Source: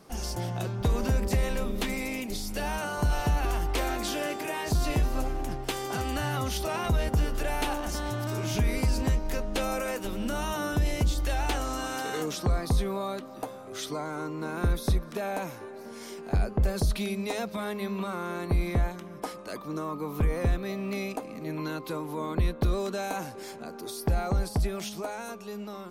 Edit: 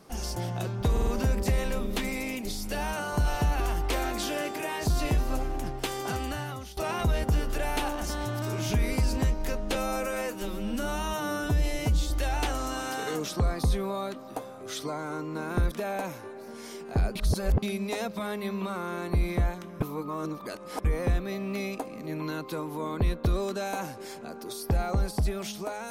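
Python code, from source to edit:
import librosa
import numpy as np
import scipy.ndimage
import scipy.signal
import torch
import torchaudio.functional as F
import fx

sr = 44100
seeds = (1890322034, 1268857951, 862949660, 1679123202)

y = fx.edit(x, sr, fx.stutter(start_s=0.92, slice_s=0.05, count=4),
    fx.fade_out_to(start_s=5.96, length_s=0.66, floor_db=-18.0),
    fx.stretch_span(start_s=9.6, length_s=1.57, factor=1.5),
    fx.cut(start_s=14.78, length_s=0.31),
    fx.reverse_span(start_s=16.53, length_s=0.47),
    fx.reverse_span(start_s=19.18, length_s=1.04), tone=tone)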